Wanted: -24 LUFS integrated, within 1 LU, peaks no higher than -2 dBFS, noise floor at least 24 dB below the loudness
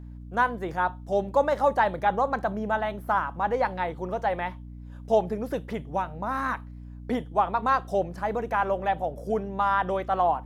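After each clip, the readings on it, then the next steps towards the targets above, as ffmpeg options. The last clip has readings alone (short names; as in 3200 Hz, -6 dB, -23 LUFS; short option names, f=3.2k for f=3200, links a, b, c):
hum 60 Hz; harmonics up to 300 Hz; hum level -39 dBFS; loudness -27.0 LUFS; peak -10.0 dBFS; loudness target -24.0 LUFS
-> -af "bandreject=f=60:t=h:w=4,bandreject=f=120:t=h:w=4,bandreject=f=180:t=h:w=4,bandreject=f=240:t=h:w=4,bandreject=f=300:t=h:w=4"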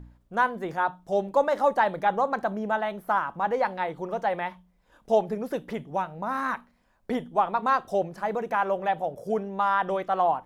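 hum none; loudness -27.0 LUFS; peak -10.5 dBFS; loudness target -24.0 LUFS
-> -af "volume=3dB"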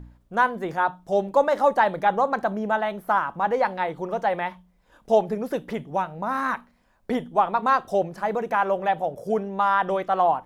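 loudness -24.0 LUFS; peak -7.5 dBFS; noise floor -62 dBFS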